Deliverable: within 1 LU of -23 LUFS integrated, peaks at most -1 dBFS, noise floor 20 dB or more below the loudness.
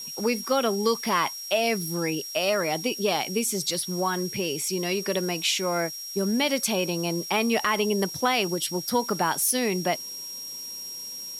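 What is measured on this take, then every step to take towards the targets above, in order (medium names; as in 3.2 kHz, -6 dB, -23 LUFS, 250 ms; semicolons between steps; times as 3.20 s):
steady tone 5.6 kHz; tone level -35 dBFS; noise floor -37 dBFS; noise floor target -46 dBFS; loudness -26.0 LUFS; peak level -11.0 dBFS; loudness target -23.0 LUFS
-> band-stop 5.6 kHz, Q 30; noise print and reduce 9 dB; trim +3 dB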